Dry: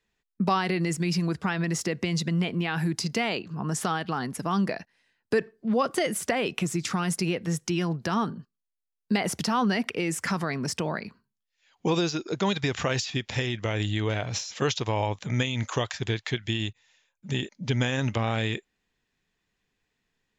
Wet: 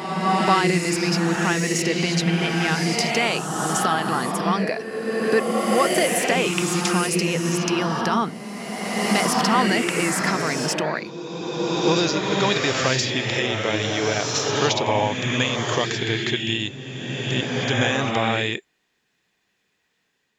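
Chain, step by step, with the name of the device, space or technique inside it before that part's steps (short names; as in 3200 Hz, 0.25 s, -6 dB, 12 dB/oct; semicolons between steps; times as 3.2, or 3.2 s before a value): ghost voice (reverse; reverb RT60 2.7 s, pre-delay 47 ms, DRR 0.5 dB; reverse; HPF 320 Hz 6 dB/oct); gain +6 dB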